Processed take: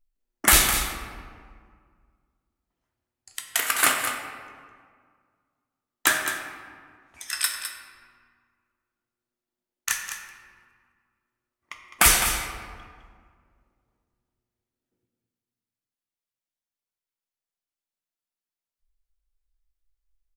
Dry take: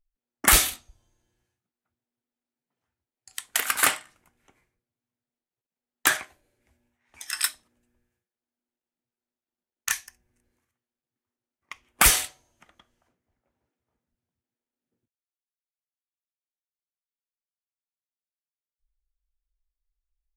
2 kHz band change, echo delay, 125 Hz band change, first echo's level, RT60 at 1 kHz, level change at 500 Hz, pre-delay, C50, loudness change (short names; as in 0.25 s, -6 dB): +2.0 dB, 0.208 s, +2.5 dB, -9.5 dB, 1.9 s, +2.5 dB, 3 ms, 3.5 dB, 0.0 dB